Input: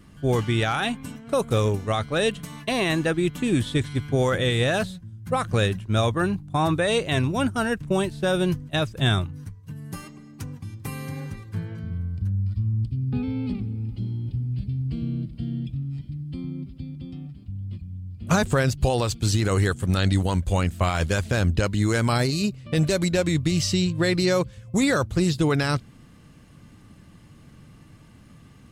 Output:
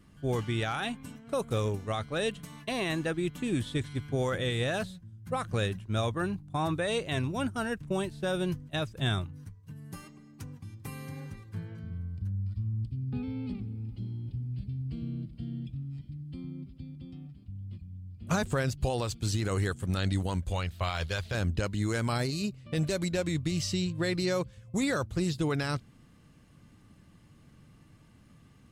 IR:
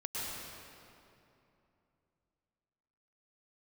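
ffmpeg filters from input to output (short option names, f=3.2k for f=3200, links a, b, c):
-filter_complex "[0:a]asettb=1/sr,asplit=3[a][b][c];[a]atrim=end=20.524[d];[b]atrim=start=20.52:end=21.35,asetpts=PTS-STARTPTS,afade=t=in:d=0.004:c=qsin,afade=t=out:st=0.826:d=0.004:c=qsin,equalizer=f=250:t=o:w=1:g=-11,equalizer=f=4k:t=o:w=1:g=8,equalizer=f=8k:t=o:w=1:g=-8[e];[c]atrim=start=21.346[f];[d][e]acrossfade=d=0.004:c1=hsin:c2=qsin[g];[g][f]acrossfade=d=0.004:c1=qsin:c2=hsin,volume=-8dB"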